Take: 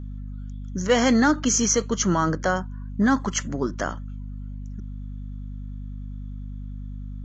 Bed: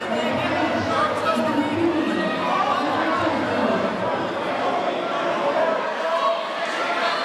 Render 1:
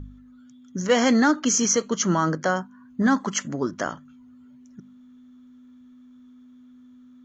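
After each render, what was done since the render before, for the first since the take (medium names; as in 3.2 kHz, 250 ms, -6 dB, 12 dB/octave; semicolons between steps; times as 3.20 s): de-hum 50 Hz, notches 4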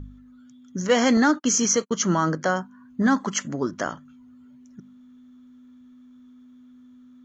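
1.17–1.91 s: gate -32 dBFS, range -43 dB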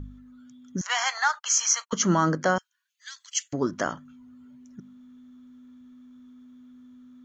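0.81–1.93 s: steep high-pass 760 Hz 48 dB/octave; 2.58–3.53 s: inverse Chebyshev high-pass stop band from 440 Hz, stop band 80 dB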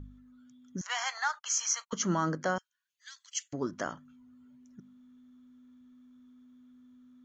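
trim -7.5 dB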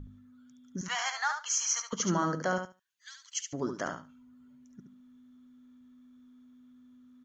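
feedback delay 71 ms, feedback 16%, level -6.5 dB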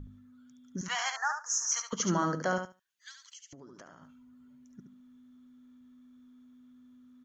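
1.16–1.72 s: Chebyshev band-stop 1.8–5.2 kHz, order 4; 3.11–4.02 s: compression 12:1, threshold -47 dBFS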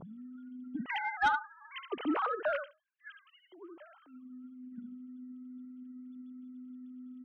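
formants replaced by sine waves; saturation -20.5 dBFS, distortion -14 dB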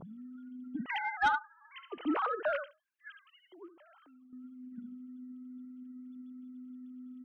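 1.38–2.06 s: feedback comb 170 Hz, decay 1 s, mix 50%; 3.68–4.33 s: compression, threshold -57 dBFS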